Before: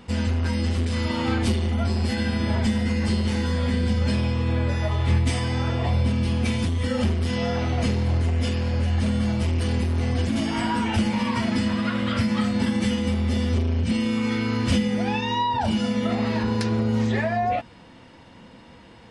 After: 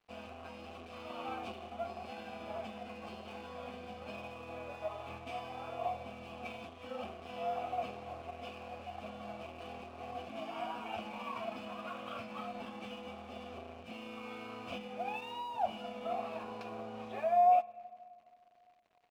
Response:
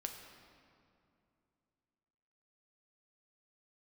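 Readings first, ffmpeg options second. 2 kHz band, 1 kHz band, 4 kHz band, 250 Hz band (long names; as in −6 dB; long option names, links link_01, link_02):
−17.0 dB, −6.0 dB, −18.5 dB, −25.5 dB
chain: -filter_complex "[0:a]asplit=3[link_01][link_02][link_03];[link_01]bandpass=frequency=730:width_type=q:width=8,volume=0dB[link_04];[link_02]bandpass=frequency=1090:width_type=q:width=8,volume=-6dB[link_05];[link_03]bandpass=frequency=2440:width_type=q:width=8,volume=-9dB[link_06];[link_04][link_05][link_06]amix=inputs=3:normalize=0,aeval=exprs='sgn(val(0))*max(abs(val(0))-0.00126,0)':channel_layout=same,asplit=2[link_07][link_08];[link_08]aresample=8000,aresample=44100[link_09];[1:a]atrim=start_sample=2205[link_10];[link_09][link_10]afir=irnorm=-1:irlink=0,volume=-10.5dB[link_11];[link_07][link_11]amix=inputs=2:normalize=0,volume=-1.5dB"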